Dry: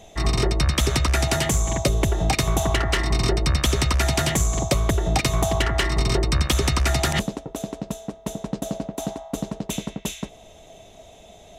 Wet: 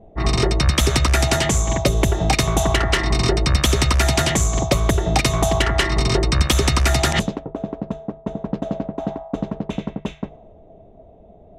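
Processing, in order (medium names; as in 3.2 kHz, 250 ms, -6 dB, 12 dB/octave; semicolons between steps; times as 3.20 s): hum notches 50/100/150 Hz; level-controlled noise filter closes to 460 Hz, open at -16.5 dBFS; trim +4 dB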